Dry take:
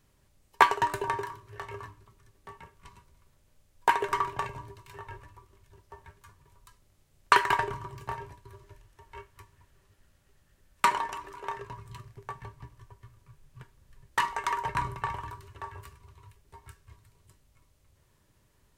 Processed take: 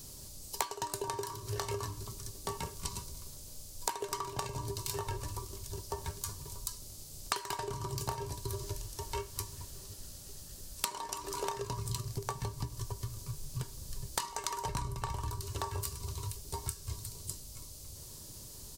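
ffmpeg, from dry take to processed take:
ffmpeg -i in.wav -filter_complex "[0:a]asettb=1/sr,asplit=3[link_01][link_02][link_03];[link_01]atrim=end=14.664[link_04];[link_02]atrim=start=14.66:end=15.42,asetpts=PTS-STARTPTS,afade=type=in:duration=0.004:curve=qsin,afade=type=out:start_time=0.756:duration=0.004:curve=qsin,lowshelf=frequency=89:gain=11[link_05];[link_03]atrim=start=15.416[link_06];[link_04][link_05]acrossfade=duration=0.004:curve1=hsin:curve2=qsin[link_07];[link_07][link_06]acrossfade=duration=0.004:curve1=qsin:curve2=hsin,firequalizer=gain_entry='entry(420,0);entry(1800,-11);entry(4600,12)':delay=0.05:min_phase=1,acompressor=threshold=-47dB:ratio=16,volume=14.5dB" out.wav

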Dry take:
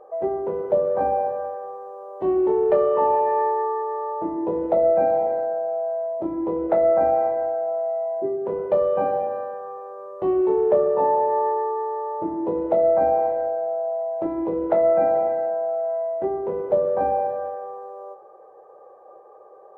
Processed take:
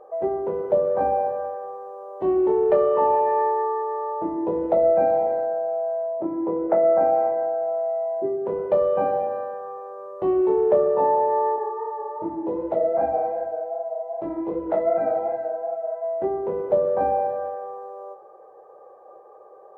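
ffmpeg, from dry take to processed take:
ffmpeg -i in.wav -filter_complex "[0:a]asettb=1/sr,asplit=3[link_01][link_02][link_03];[link_01]atrim=end=6.034[link_04];[link_02]atrim=start=6.03:end=7.62,asetpts=PTS-STARTPTS,afade=type=in:duration=0.004:curve=qsin,afade=type=out:start_time=1.586:duration=0.004:curve=qsin,highpass=130,lowpass=2100[link_05];[link_03]atrim=start=7.616[link_06];[link_04][link_05]acrossfade=duration=0.004:curve1=hsin:curve2=qsin[link_07];[link_07][link_06]acrossfade=duration=0.004:curve1=qsin:curve2=hsin,asettb=1/sr,asplit=3[link_08][link_09][link_10];[link_08]atrim=end=11.564[link_11];[link_09]atrim=start=11.56:end=16.04,asetpts=PTS-STARTPTS,afade=type=in:duration=0.004:curve=qsin,afade=type=out:start_time=4.476:duration=0.004:curve=qsin,flanger=delay=17:depth=5.1:speed=2.6[link_12];[link_10]atrim=start=16.036[link_13];[link_11][link_12]acrossfade=duration=0.004:curve1=hsin:curve2=qsin[link_14];[link_14][link_13]acrossfade=duration=0.004:curve1=qsin:curve2=hsin" out.wav

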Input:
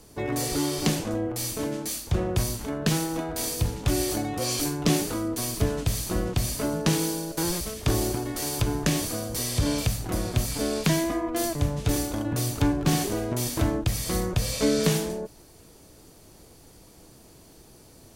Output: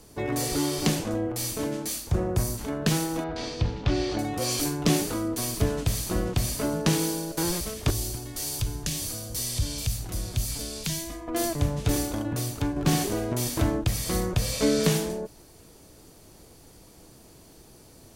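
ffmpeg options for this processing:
ffmpeg -i in.wav -filter_complex "[0:a]asettb=1/sr,asplit=3[link_01][link_02][link_03];[link_01]atrim=end=2.114[link_04];[link_02]atrim=start=2.11:end=2.58,asetpts=PTS-STARTPTS,afade=type=in:duration=0.004:curve=qsin,afade=type=out:start_time=0.466:duration=0.004:curve=qsin,equalizer=frequency=3200:width=1.1:gain=-8.5[link_05];[link_03]atrim=start=2.576[link_06];[link_04][link_05]acrossfade=duration=0.004:curve1=hsin:curve2=qsin[link_07];[link_07][link_06]acrossfade=duration=0.004:curve1=qsin:curve2=hsin,asettb=1/sr,asplit=3[link_08][link_09][link_10];[link_08]atrim=end=3.244[link_11];[link_09]atrim=start=3.24:end=4.19,asetpts=PTS-STARTPTS,afade=type=in:duration=0.004:curve=qsin,afade=type=out:start_time=0.946:duration=0.004:curve=qsin,lowpass=frequency=4800:width=0.5412,lowpass=frequency=4800:width=1.3066[link_12];[link_10]atrim=start=4.186[link_13];[link_11][link_12]acrossfade=duration=0.004:curve1=hsin:curve2=qsin[link_14];[link_14][link_13]acrossfade=duration=0.004:curve1=qsin:curve2=hsin,asettb=1/sr,asplit=3[link_15][link_16][link_17];[link_15]atrim=end=7.904[link_18];[link_16]atrim=start=7.9:end=11.28,asetpts=PTS-STARTPTS,afade=type=in:duration=0.004:curve=qsin,afade=type=out:start_time=3.376:duration=0.004:curve=qsin,acrossover=split=120|3000[link_19][link_20][link_21];[link_20]acompressor=threshold=-44dB:ratio=2.5:attack=3.2:release=140:knee=2.83:detection=peak[link_22];[link_19][link_22][link_21]amix=inputs=3:normalize=0[link_23];[link_17]atrim=start=11.276[link_24];[link_18][link_23]acrossfade=duration=0.004:curve1=hsin:curve2=qsin[link_25];[link_25][link_24]acrossfade=duration=0.004:curve1=qsin:curve2=hsin,asplit=2[link_26][link_27];[link_26]atrim=end=12.76,asetpts=PTS-STARTPTS,afade=type=out:start_time=12.08:duration=0.68:silence=0.473151[link_28];[link_27]atrim=start=12.76,asetpts=PTS-STARTPTS,afade=type=in:duration=0.004:curve=hsin:silence=0.473151[link_29];[link_28][link_29]concat=n=2:v=0:a=1" out.wav

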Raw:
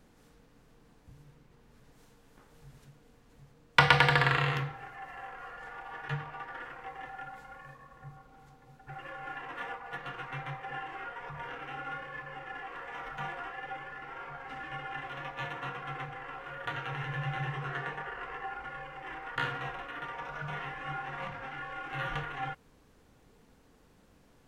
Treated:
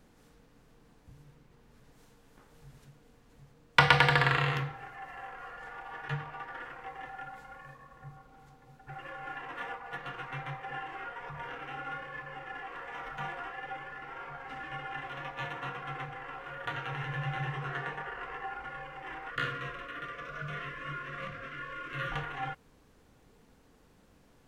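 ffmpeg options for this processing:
ffmpeg -i in.wav -filter_complex "[0:a]asettb=1/sr,asplit=3[link_01][link_02][link_03];[link_01]atrim=end=19.304[link_04];[link_02]atrim=start=19.3:end=22.12,asetpts=PTS-STARTPTS,afade=type=in:duration=0.004:curve=qsin,afade=type=out:start_time=2.816:duration=0.004:curve=qsin,asuperstop=centerf=840:order=20:qfactor=2.8[link_05];[link_03]atrim=start=22.116[link_06];[link_04][link_05]acrossfade=duration=0.004:curve1=hsin:curve2=qsin[link_07];[link_07][link_06]acrossfade=duration=0.004:curve1=qsin:curve2=hsin" out.wav

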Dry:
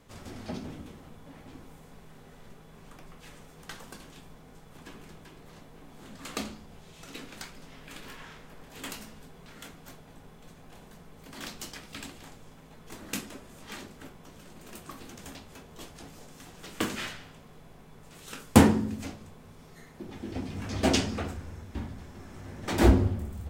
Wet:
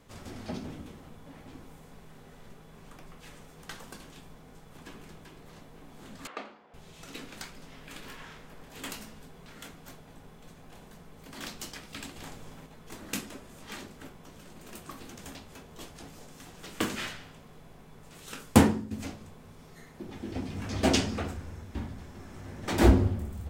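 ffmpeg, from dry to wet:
ffmpeg -i in.wav -filter_complex "[0:a]asettb=1/sr,asplit=3[link_01][link_02][link_03];[link_01]atrim=end=6.274[link_04];[link_02]atrim=start=6.27:end=6.74,asetpts=PTS-STARTPTS,afade=type=in:duration=0.004:curve=qsin,afade=type=out:start_time=0.466:duration=0.004:curve=qsin,highpass=490,lowpass=2000[link_05];[link_03]atrim=start=6.736[link_06];[link_04][link_05]acrossfade=duration=0.004:curve1=hsin:curve2=qsin[link_07];[link_07][link_06]acrossfade=duration=0.004:curve1=qsin:curve2=hsin,asplit=4[link_08][link_09][link_10][link_11];[link_08]atrim=end=12.162[link_12];[link_09]atrim=start=12.158:end=12.662,asetpts=PTS-STARTPTS,volume=4.5dB[link_13];[link_10]atrim=start=12.658:end=18.91,asetpts=PTS-STARTPTS,afade=type=out:start_time=5.812:duration=0.44:silence=0.266073[link_14];[link_11]atrim=start=18.91,asetpts=PTS-STARTPTS,afade=type=in:duration=0.004:curve=hsin:silence=0.266073[link_15];[link_12][link_13]acrossfade=duration=0.004:curve1=hsin:curve2=hsin[link_16];[link_14][link_15]concat=n=2:v=0:a=1[link_17];[link_16][link_17]acrossfade=duration=0.004:curve1=hsin:curve2=hsin" out.wav

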